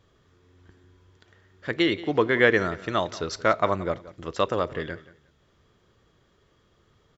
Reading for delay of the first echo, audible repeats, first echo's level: 0.178 s, 2, -18.0 dB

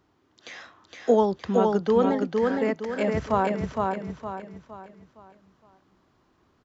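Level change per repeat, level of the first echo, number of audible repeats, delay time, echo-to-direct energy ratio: -8.0 dB, -3.0 dB, 4, 0.463 s, -2.5 dB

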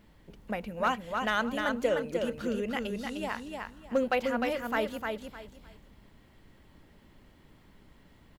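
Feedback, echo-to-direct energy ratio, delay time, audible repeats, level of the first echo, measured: 24%, -4.0 dB, 0.304 s, 3, -4.5 dB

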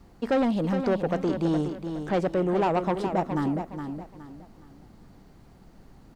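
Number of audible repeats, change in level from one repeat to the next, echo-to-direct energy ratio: 3, -10.0 dB, -7.5 dB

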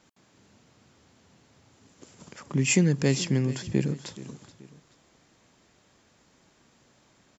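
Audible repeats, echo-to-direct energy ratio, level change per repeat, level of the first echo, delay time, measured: 2, -16.5 dB, -8.0 dB, -17.0 dB, 0.428 s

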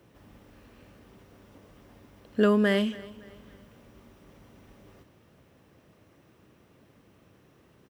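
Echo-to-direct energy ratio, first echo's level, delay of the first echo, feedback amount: -19.5 dB, -20.0 dB, 0.281 s, 40%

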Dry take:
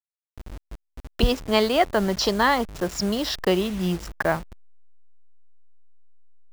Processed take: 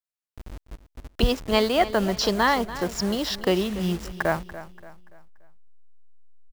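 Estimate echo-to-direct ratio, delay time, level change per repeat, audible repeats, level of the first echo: -14.0 dB, 0.288 s, -8.0 dB, 3, -15.0 dB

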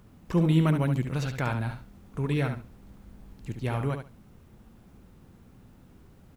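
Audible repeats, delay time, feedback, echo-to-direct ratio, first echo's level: 2, 70 ms, 18%, -7.5 dB, -7.5 dB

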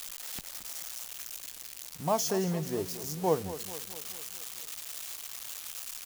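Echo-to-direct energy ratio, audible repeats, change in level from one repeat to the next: -12.0 dB, 5, -4.5 dB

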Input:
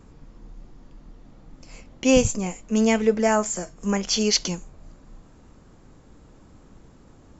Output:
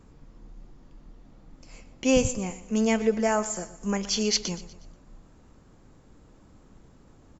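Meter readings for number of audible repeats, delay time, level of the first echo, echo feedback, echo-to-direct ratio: 3, 0.121 s, -16.0 dB, 43%, -15.0 dB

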